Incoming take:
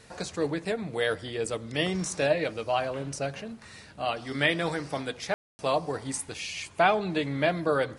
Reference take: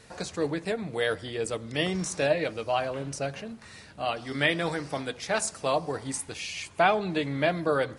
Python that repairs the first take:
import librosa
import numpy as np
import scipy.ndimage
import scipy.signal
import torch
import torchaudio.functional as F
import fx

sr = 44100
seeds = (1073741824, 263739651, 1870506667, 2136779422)

y = fx.fix_ambience(x, sr, seeds[0], print_start_s=3.5, print_end_s=4.0, start_s=5.34, end_s=5.59)